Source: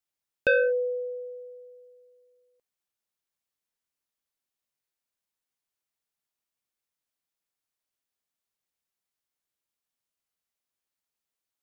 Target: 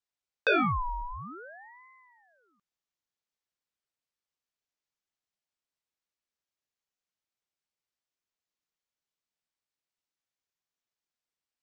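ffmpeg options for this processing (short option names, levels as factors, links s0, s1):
-af "aresample=16000,aresample=44100,aeval=exprs='val(0)*sin(2*PI*1000*n/s+1000*0.55/0.52*sin(2*PI*0.52*n/s))':c=same"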